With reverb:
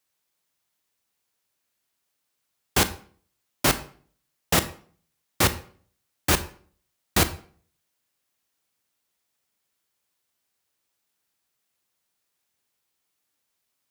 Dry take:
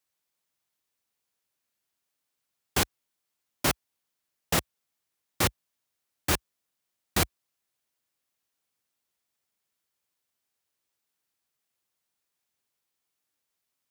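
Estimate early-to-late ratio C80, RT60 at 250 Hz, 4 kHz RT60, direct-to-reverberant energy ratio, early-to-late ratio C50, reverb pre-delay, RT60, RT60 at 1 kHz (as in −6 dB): 18.0 dB, 0.60 s, 0.40 s, 11.5 dB, 14.5 dB, 24 ms, 0.45 s, 0.45 s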